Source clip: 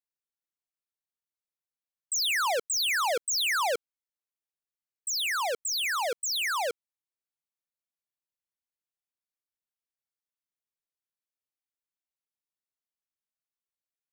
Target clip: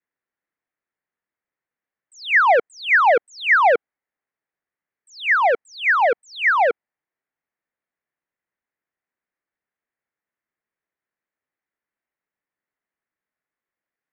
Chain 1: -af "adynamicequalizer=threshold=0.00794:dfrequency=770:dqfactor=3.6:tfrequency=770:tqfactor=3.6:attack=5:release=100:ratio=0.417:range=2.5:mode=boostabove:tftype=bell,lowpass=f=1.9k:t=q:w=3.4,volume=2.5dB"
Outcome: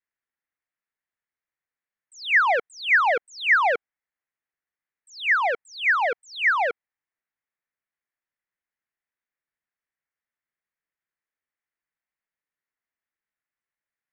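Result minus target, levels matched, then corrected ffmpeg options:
250 Hz band -5.5 dB
-af "adynamicequalizer=threshold=0.00794:dfrequency=770:dqfactor=3.6:tfrequency=770:tqfactor=3.6:attack=5:release=100:ratio=0.417:range=2.5:mode=boostabove:tftype=bell,lowpass=f=1.9k:t=q:w=3.4,equalizer=f=350:w=0.33:g=9.5,volume=2.5dB"

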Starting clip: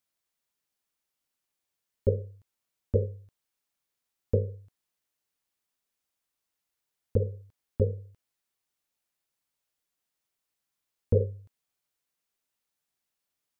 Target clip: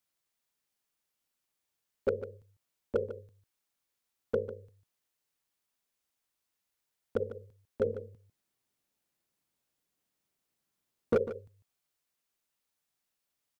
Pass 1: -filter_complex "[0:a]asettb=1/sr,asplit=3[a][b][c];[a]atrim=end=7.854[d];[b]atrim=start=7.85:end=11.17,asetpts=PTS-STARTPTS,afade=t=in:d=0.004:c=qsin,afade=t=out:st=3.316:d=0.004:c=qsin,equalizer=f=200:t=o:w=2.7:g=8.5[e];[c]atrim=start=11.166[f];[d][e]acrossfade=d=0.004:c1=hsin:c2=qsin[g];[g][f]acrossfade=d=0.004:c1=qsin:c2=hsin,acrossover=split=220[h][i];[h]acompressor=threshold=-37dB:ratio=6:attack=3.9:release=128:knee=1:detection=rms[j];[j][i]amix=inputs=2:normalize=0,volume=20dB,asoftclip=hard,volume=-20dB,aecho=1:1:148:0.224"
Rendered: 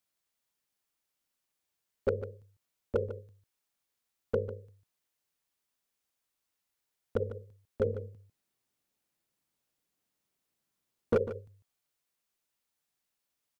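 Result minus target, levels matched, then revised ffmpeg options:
compressor: peak gain reduction -8.5 dB
-filter_complex "[0:a]asettb=1/sr,asplit=3[a][b][c];[a]atrim=end=7.854[d];[b]atrim=start=7.85:end=11.17,asetpts=PTS-STARTPTS,afade=t=in:d=0.004:c=qsin,afade=t=out:st=3.316:d=0.004:c=qsin,equalizer=f=200:t=o:w=2.7:g=8.5[e];[c]atrim=start=11.166[f];[d][e]acrossfade=d=0.004:c1=hsin:c2=qsin[g];[g][f]acrossfade=d=0.004:c1=qsin:c2=hsin,acrossover=split=220[h][i];[h]acompressor=threshold=-47dB:ratio=6:attack=3.9:release=128:knee=1:detection=rms[j];[j][i]amix=inputs=2:normalize=0,volume=20dB,asoftclip=hard,volume=-20dB,aecho=1:1:148:0.224"

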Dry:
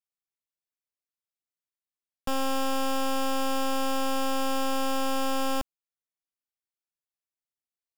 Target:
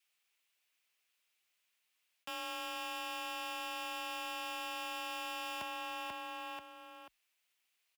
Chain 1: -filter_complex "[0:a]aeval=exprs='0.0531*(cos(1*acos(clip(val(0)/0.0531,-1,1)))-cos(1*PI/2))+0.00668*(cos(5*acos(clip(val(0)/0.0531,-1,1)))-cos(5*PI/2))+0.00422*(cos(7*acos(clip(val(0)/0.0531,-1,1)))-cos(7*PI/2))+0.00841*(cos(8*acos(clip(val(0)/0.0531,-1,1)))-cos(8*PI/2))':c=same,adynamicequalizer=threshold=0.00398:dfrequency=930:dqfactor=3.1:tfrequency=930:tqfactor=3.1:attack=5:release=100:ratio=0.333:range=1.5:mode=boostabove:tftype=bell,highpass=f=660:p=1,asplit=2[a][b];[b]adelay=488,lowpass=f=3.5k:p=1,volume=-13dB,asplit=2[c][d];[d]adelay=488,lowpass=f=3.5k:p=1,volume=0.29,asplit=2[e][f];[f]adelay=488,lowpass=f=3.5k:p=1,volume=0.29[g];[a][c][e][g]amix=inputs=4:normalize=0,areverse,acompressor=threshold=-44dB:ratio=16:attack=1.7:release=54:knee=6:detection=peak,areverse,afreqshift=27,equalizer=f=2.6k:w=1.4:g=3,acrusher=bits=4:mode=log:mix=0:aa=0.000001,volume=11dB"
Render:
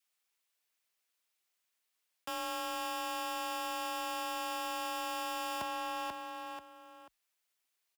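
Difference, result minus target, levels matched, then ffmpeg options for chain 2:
compressor: peak gain reduction -6 dB; 2000 Hz band -3.0 dB
-filter_complex "[0:a]aeval=exprs='0.0531*(cos(1*acos(clip(val(0)/0.0531,-1,1)))-cos(1*PI/2))+0.00668*(cos(5*acos(clip(val(0)/0.0531,-1,1)))-cos(5*PI/2))+0.00422*(cos(7*acos(clip(val(0)/0.0531,-1,1)))-cos(7*PI/2))+0.00841*(cos(8*acos(clip(val(0)/0.0531,-1,1)))-cos(8*PI/2))':c=same,adynamicequalizer=threshold=0.00398:dfrequency=930:dqfactor=3.1:tfrequency=930:tqfactor=3.1:attack=5:release=100:ratio=0.333:range=1.5:mode=boostabove:tftype=bell,highpass=f=660:p=1,asplit=2[a][b];[b]adelay=488,lowpass=f=3.5k:p=1,volume=-13dB,asplit=2[c][d];[d]adelay=488,lowpass=f=3.5k:p=1,volume=0.29,asplit=2[e][f];[f]adelay=488,lowpass=f=3.5k:p=1,volume=0.29[g];[a][c][e][g]amix=inputs=4:normalize=0,areverse,acompressor=threshold=-50.5dB:ratio=16:attack=1.7:release=54:knee=6:detection=peak,areverse,afreqshift=27,equalizer=f=2.6k:w=1.4:g=11,acrusher=bits=4:mode=log:mix=0:aa=0.000001,volume=11dB"

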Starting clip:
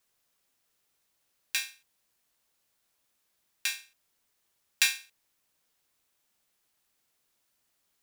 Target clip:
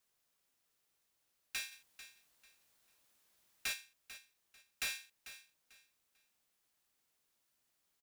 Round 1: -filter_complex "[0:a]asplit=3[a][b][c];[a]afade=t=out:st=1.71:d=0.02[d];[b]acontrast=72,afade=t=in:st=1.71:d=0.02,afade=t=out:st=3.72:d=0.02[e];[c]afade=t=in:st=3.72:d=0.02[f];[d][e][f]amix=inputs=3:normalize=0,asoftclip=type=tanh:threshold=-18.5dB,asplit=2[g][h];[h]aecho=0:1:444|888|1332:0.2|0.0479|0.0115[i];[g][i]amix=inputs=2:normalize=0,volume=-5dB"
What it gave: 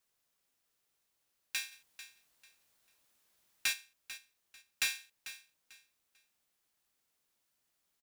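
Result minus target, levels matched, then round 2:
soft clip: distortion -7 dB
-filter_complex "[0:a]asplit=3[a][b][c];[a]afade=t=out:st=1.71:d=0.02[d];[b]acontrast=72,afade=t=in:st=1.71:d=0.02,afade=t=out:st=3.72:d=0.02[e];[c]afade=t=in:st=3.72:d=0.02[f];[d][e][f]amix=inputs=3:normalize=0,asoftclip=type=tanh:threshold=-29dB,asplit=2[g][h];[h]aecho=0:1:444|888|1332:0.2|0.0479|0.0115[i];[g][i]amix=inputs=2:normalize=0,volume=-5dB"

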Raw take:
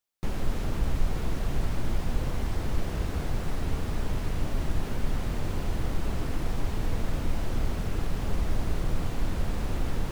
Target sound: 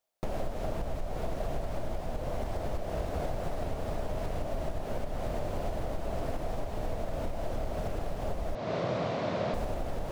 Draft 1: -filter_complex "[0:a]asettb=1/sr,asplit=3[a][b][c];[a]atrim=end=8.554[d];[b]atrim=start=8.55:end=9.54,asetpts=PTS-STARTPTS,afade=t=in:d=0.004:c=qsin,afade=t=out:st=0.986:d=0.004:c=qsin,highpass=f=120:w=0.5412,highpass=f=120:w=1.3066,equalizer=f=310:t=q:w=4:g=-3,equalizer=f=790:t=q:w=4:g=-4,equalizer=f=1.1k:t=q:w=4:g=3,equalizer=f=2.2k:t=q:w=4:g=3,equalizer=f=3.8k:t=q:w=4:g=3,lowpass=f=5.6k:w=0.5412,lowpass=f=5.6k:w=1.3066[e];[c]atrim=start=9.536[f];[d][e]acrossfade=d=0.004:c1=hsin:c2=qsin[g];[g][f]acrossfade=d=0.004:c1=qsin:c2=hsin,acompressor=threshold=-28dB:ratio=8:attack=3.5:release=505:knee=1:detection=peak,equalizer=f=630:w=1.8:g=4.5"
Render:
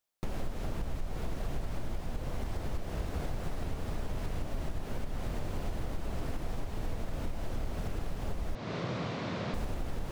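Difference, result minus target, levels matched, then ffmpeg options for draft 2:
500 Hz band -5.0 dB
-filter_complex "[0:a]asettb=1/sr,asplit=3[a][b][c];[a]atrim=end=8.554[d];[b]atrim=start=8.55:end=9.54,asetpts=PTS-STARTPTS,afade=t=in:d=0.004:c=qsin,afade=t=out:st=0.986:d=0.004:c=qsin,highpass=f=120:w=0.5412,highpass=f=120:w=1.3066,equalizer=f=310:t=q:w=4:g=-3,equalizer=f=790:t=q:w=4:g=-4,equalizer=f=1.1k:t=q:w=4:g=3,equalizer=f=2.2k:t=q:w=4:g=3,equalizer=f=3.8k:t=q:w=4:g=3,lowpass=f=5.6k:w=0.5412,lowpass=f=5.6k:w=1.3066[e];[c]atrim=start=9.536[f];[d][e]acrossfade=d=0.004:c1=hsin:c2=qsin[g];[g][f]acrossfade=d=0.004:c1=qsin:c2=hsin,acompressor=threshold=-28dB:ratio=8:attack=3.5:release=505:knee=1:detection=peak,equalizer=f=630:w=1.8:g=16"

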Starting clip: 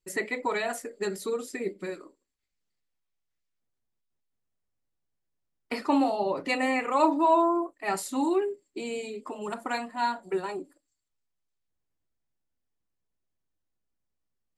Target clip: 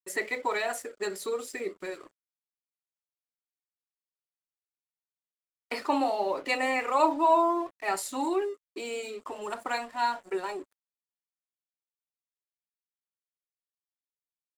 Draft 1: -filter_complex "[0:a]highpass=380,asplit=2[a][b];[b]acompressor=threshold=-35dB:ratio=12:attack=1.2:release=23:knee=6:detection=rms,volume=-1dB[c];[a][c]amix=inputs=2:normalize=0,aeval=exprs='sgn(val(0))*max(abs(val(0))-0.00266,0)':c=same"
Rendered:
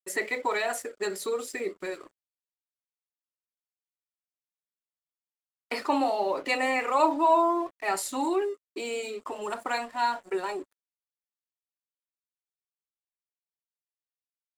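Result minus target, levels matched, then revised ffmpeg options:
compressor: peak gain reduction -9 dB
-filter_complex "[0:a]highpass=380,asplit=2[a][b];[b]acompressor=threshold=-45dB:ratio=12:attack=1.2:release=23:knee=6:detection=rms,volume=-1dB[c];[a][c]amix=inputs=2:normalize=0,aeval=exprs='sgn(val(0))*max(abs(val(0))-0.00266,0)':c=same"

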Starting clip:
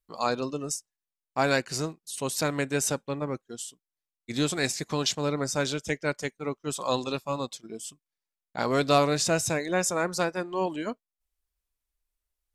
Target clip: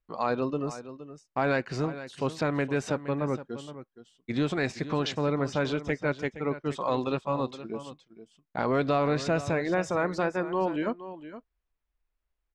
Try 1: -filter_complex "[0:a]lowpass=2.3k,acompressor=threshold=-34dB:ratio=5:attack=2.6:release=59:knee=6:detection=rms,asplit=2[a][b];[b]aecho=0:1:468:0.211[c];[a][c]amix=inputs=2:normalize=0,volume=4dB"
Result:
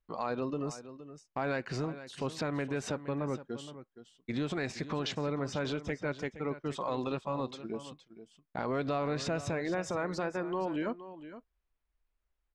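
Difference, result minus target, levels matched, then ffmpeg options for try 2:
compressor: peak gain reduction +7 dB
-filter_complex "[0:a]lowpass=2.3k,acompressor=threshold=-25dB:ratio=5:attack=2.6:release=59:knee=6:detection=rms,asplit=2[a][b];[b]aecho=0:1:468:0.211[c];[a][c]amix=inputs=2:normalize=0,volume=4dB"

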